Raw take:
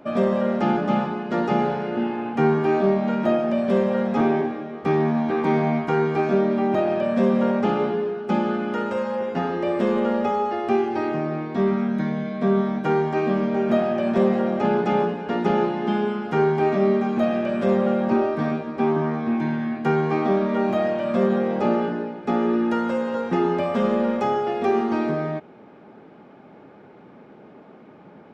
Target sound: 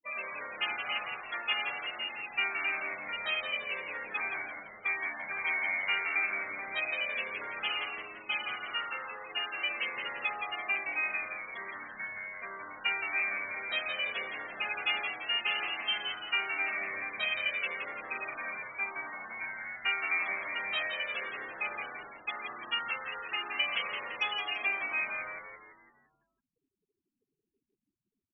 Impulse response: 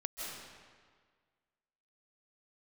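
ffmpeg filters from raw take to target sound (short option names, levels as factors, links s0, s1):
-filter_complex "[0:a]afftfilt=real='re*gte(hypot(re,im),0.0355)':imag='im*gte(hypot(re,im),0.0355)':win_size=1024:overlap=0.75,adynamicequalizer=threshold=0.00316:dfrequency=4300:dqfactor=1.3:tfrequency=4300:tqfactor=1.3:attack=5:release=100:ratio=0.375:range=2:mode=boostabove:tftype=bell,asplit=2[s0][s1];[s1]acompressor=threshold=0.02:ratio=8,volume=1.06[s2];[s0][s2]amix=inputs=2:normalize=0,highpass=f=2700:t=q:w=4.5,asplit=2[s3][s4];[s4]asplit=6[s5][s6][s7][s8][s9][s10];[s5]adelay=169,afreqshift=-96,volume=0.501[s11];[s6]adelay=338,afreqshift=-192,volume=0.234[s12];[s7]adelay=507,afreqshift=-288,volume=0.111[s13];[s8]adelay=676,afreqshift=-384,volume=0.0519[s14];[s9]adelay=845,afreqshift=-480,volume=0.0245[s15];[s10]adelay=1014,afreqshift=-576,volume=0.0115[s16];[s11][s12][s13][s14][s15][s16]amix=inputs=6:normalize=0[s17];[s3][s17]amix=inputs=2:normalize=0,asplit=2[s18][s19];[s19]asetrate=37084,aresample=44100,atempo=1.18921,volume=0.224[s20];[s18][s20]amix=inputs=2:normalize=0"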